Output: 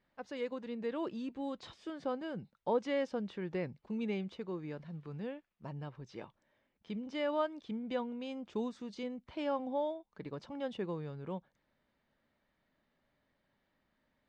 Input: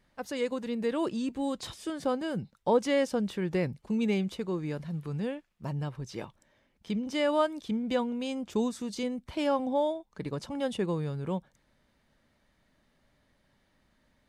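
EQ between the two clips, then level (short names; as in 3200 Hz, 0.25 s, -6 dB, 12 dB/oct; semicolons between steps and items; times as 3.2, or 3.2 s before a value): air absorption 160 m; low shelf 140 Hz -9 dB; -6.0 dB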